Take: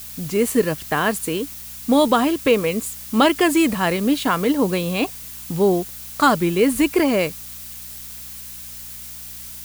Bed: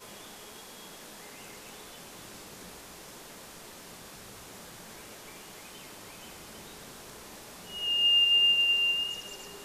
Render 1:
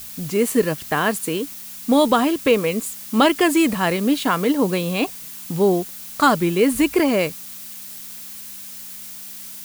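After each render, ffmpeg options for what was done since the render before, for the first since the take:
-af "bandreject=f=60:t=h:w=4,bandreject=f=120:t=h:w=4"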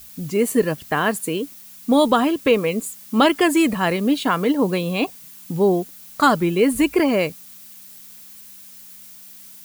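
-af "afftdn=nr=8:nf=-36"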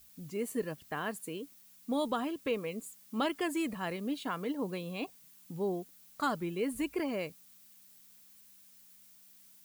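-af "volume=-16.5dB"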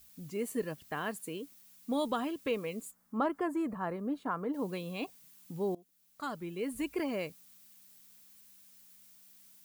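-filter_complex "[0:a]asplit=3[a][b][c];[a]afade=t=out:st=2.9:d=0.02[d];[b]highshelf=f=1.9k:t=q:w=1.5:g=-13.5,afade=t=in:st=2.9:d=0.02,afade=t=out:st=4.53:d=0.02[e];[c]afade=t=in:st=4.53:d=0.02[f];[d][e][f]amix=inputs=3:normalize=0,asplit=2[g][h];[g]atrim=end=5.75,asetpts=PTS-STARTPTS,afade=t=out:st=5.746:d=0.004:c=hsin:silence=0.0891251[i];[h]atrim=start=5.75,asetpts=PTS-STARTPTS,afade=t=in:d=1.27:silence=0.0891251[j];[i][j]concat=n=2:v=0:a=1"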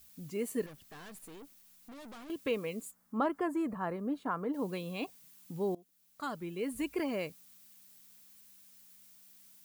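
-filter_complex "[0:a]asettb=1/sr,asplit=3[a][b][c];[a]atrim=end=0.664[d];[b]atrim=start=0.66:end=2.3,asetpts=PTS-STARTPTS,afade=t=in:d=0.004:c=qsin,afade=t=out:st=1.636:d=0.004:c=qsin,aeval=exprs='(tanh(251*val(0)+0.5)-tanh(0.5))/251':c=same[e];[c]atrim=start=2.296[f];[d][e]acrossfade=d=0.004:c1=hsin:c2=qsin[g];[g][f]acrossfade=d=0.004:c1=qsin:c2=hsin"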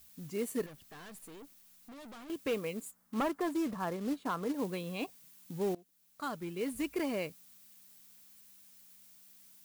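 -af "asoftclip=type=hard:threshold=-26.5dB,acrusher=bits=4:mode=log:mix=0:aa=0.000001"

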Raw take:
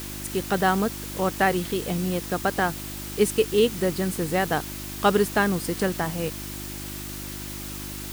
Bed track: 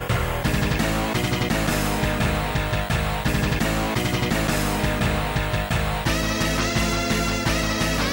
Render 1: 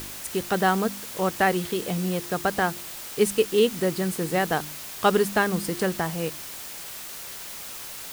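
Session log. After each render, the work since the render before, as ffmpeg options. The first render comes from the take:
-af "bandreject=f=50:t=h:w=4,bandreject=f=100:t=h:w=4,bandreject=f=150:t=h:w=4,bandreject=f=200:t=h:w=4,bandreject=f=250:t=h:w=4,bandreject=f=300:t=h:w=4,bandreject=f=350:t=h:w=4"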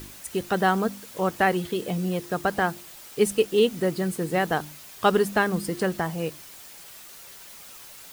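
-af "afftdn=nr=8:nf=-38"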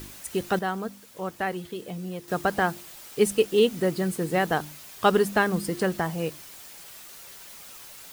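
-filter_complex "[0:a]asplit=3[a][b][c];[a]atrim=end=0.592[d];[b]atrim=start=0.588:end=2.282,asetpts=PTS-STARTPTS,volume=-7.5dB[e];[c]atrim=start=2.278[f];[d][e]acrossfade=d=0.004:c1=hsin:c2=hsin[g];[g][f]acrossfade=d=0.004:c1=hsin:c2=hsin"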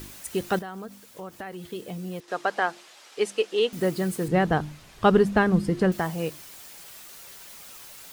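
-filter_complex "[0:a]asettb=1/sr,asplit=3[a][b][c];[a]atrim=end=0.604[d];[b]atrim=start=0.6:end=1.68,asetpts=PTS-STARTPTS,afade=t=in:d=0.004:c=qsin,afade=t=out:st=1.076:d=0.004:c=qsin,acompressor=threshold=-34dB:ratio=4:attack=3.2:release=140:knee=1:detection=peak[e];[c]atrim=start=1.676[f];[d][e]acrossfade=d=0.004:c1=hsin:c2=qsin[g];[g][f]acrossfade=d=0.004:c1=qsin:c2=hsin,asettb=1/sr,asplit=3[h][i][j];[h]atrim=end=2.204[k];[i]atrim=start=2.2:end=3.73,asetpts=PTS-STARTPTS,afade=t=in:d=0.004:c=qsin,afade=t=out:st=1.526:d=0.004:c=qsin,highpass=450,lowpass=5.7k[l];[j]atrim=start=3.726[m];[k][l]acrossfade=d=0.004:c1=hsin:c2=qsin[n];[n][m]acrossfade=d=0.004:c1=qsin:c2=hsin,asettb=1/sr,asplit=3[o][p][q];[o]atrim=end=4.284[r];[p]atrim=start=4.28:end=5.92,asetpts=PTS-STARTPTS,afade=t=in:d=0.004:c=qsin,afade=t=out:st=1.636:d=0.004:c=qsin,aemphasis=mode=reproduction:type=bsi[s];[q]atrim=start=5.916[t];[r][s]acrossfade=d=0.004:c1=hsin:c2=qsin[u];[u][t]acrossfade=d=0.004:c1=qsin:c2=hsin"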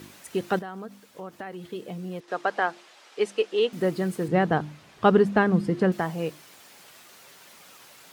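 -af "highpass=130,aemphasis=mode=reproduction:type=cd"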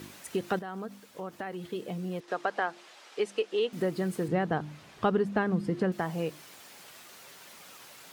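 -af "acompressor=threshold=-29dB:ratio=2"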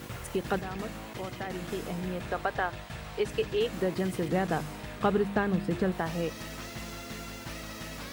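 -filter_complex "[1:a]volume=-18.5dB[a];[0:a][a]amix=inputs=2:normalize=0"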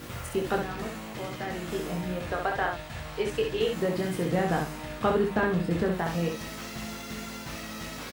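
-filter_complex "[0:a]asplit=2[a][b];[b]adelay=13,volume=-11dB[c];[a][c]amix=inputs=2:normalize=0,aecho=1:1:23|65:0.562|0.596"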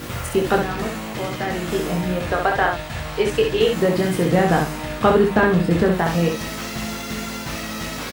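-af "volume=9.5dB"

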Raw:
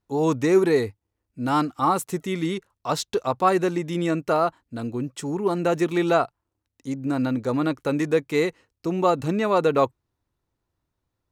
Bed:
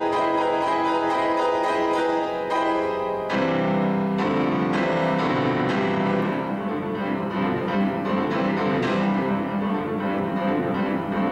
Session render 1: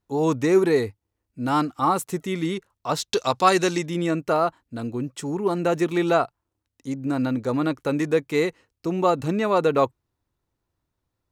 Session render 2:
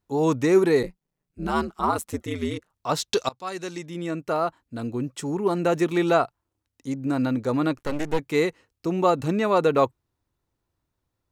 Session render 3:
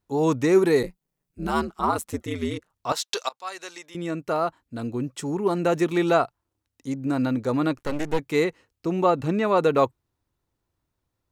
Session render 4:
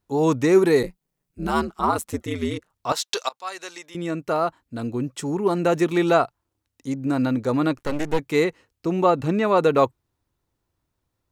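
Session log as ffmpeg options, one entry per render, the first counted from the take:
-filter_complex "[0:a]asettb=1/sr,asplit=3[a][b][c];[a]atrim=end=3.134[d];[b]atrim=start=3.13:end=3.86,asetpts=PTS-STARTPTS,afade=t=in:d=0.004:c=qsin,afade=t=out:st=0.726:d=0.004:c=qsin,equalizer=f=5.3k:t=o:w=2.2:g=14.5[e];[c]atrim=start=3.856[f];[d][e]acrossfade=d=0.004:c1=hsin:c2=qsin[g];[g][f]acrossfade=d=0.004:c1=qsin:c2=hsin"
-filter_complex "[0:a]asplit=3[a][b][c];[a]afade=t=out:st=0.82:d=0.02[d];[b]aeval=exprs='val(0)*sin(2*PI*79*n/s)':c=same,afade=t=in:st=0.82:d=0.02,afade=t=out:st=2.72:d=0.02[e];[c]afade=t=in:st=2.72:d=0.02[f];[d][e][f]amix=inputs=3:normalize=0,asettb=1/sr,asplit=3[g][h][i];[g]atrim=end=7.774[j];[h]atrim=start=7.77:end=8.19,asetpts=PTS-STARTPTS,afade=t=in:d=0.004:c=qsin,afade=t=out:st=0.416:d=0.004:c=qsin,aeval=exprs='max(val(0),0)':c=same[k];[i]atrim=start=8.186[l];[j][k]acrossfade=d=0.004:c1=hsin:c2=qsin[m];[m][l]acrossfade=d=0.004:c1=qsin:c2=hsin,asplit=2[n][o];[n]atrim=end=3.29,asetpts=PTS-STARTPTS,afade=t=out:st=3.286:d=0.004:c=hsin:silence=0.0630957[p];[o]atrim=start=3.29,asetpts=PTS-STARTPTS,afade=t=in:d=1.66:silence=0.0630957[q];[p][q]concat=n=2:v=0:a=1"
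-filter_complex "[0:a]asettb=1/sr,asplit=3[a][b][c];[a]atrim=end=0.644[d];[b]atrim=start=0.64:end=1.6,asetpts=PTS-STARTPTS,afade=t=in:d=0.004:c=qsin,afade=t=out:st=0.956:d=0.004:c=qsin,highshelf=f=8.8k:g=7[e];[c]atrim=start=1.596[f];[d][e]acrossfade=d=0.004:c1=hsin:c2=qsin[g];[g][f]acrossfade=d=0.004:c1=qsin:c2=hsin,asettb=1/sr,asplit=3[h][i][j];[h]atrim=end=2.924[k];[i]atrim=start=2.92:end=3.95,asetpts=PTS-STARTPTS,afade=t=in:d=0.004:c=qsin,afade=t=out:st=1.026:d=0.004:c=qsin,highpass=670[l];[j]atrim=start=3.946[m];[k][l]acrossfade=d=0.004:c1=hsin:c2=qsin[n];[n][m]acrossfade=d=0.004:c1=qsin:c2=hsin,asettb=1/sr,asplit=3[o][p][q];[o]atrim=end=8.444[r];[p]atrim=start=8.44:end=9.58,asetpts=PTS-STARTPTS,afade=t=in:d=0.004:c=qsin,afade=t=out:st=1.136:d=0.004:c=qsin,acrossover=split=3800[s][t];[t]acompressor=threshold=-49dB:ratio=4:attack=1:release=60[u];[s][u]amix=inputs=2:normalize=0[v];[q]atrim=start=9.576[w];[r][v]acrossfade=d=0.004:c1=hsin:c2=qsin[x];[x][w]acrossfade=d=0.004:c1=qsin:c2=hsin"
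-af "volume=2dB"

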